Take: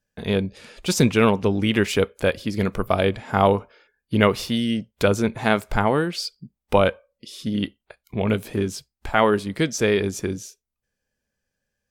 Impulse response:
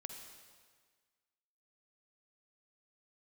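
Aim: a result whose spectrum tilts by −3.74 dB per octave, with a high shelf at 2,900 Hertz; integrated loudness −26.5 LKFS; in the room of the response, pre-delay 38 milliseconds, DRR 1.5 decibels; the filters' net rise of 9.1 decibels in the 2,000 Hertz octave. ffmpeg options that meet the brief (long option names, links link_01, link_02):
-filter_complex "[0:a]equalizer=frequency=2000:width_type=o:gain=8.5,highshelf=frequency=2900:gain=8.5,asplit=2[link_01][link_02];[1:a]atrim=start_sample=2205,adelay=38[link_03];[link_02][link_03]afir=irnorm=-1:irlink=0,volume=2dB[link_04];[link_01][link_04]amix=inputs=2:normalize=0,volume=-9.5dB"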